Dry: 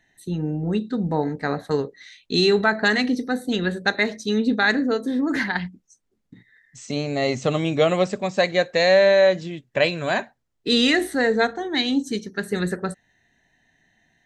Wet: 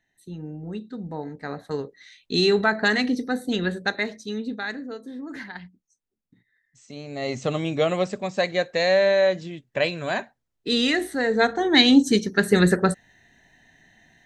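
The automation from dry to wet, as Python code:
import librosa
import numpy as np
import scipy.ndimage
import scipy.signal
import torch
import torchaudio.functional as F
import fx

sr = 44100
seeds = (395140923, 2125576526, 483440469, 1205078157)

y = fx.gain(x, sr, db=fx.line((1.21, -10.0), (2.44, -1.5), (3.66, -1.5), (4.8, -13.0), (6.96, -13.0), (7.37, -3.5), (11.26, -3.5), (11.69, 7.0)))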